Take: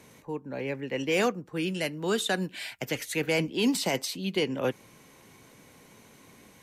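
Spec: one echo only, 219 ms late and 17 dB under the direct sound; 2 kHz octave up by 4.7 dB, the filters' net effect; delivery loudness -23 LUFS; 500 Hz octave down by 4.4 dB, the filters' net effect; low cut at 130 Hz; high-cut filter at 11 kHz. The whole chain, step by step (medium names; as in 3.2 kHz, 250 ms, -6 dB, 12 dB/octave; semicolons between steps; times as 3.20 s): high-pass 130 Hz; low-pass 11 kHz; peaking EQ 500 Hz -5.5 dB; peaking EQ 2 kHz +6 dB; delay 219 ms -17 dB; trim +6 dB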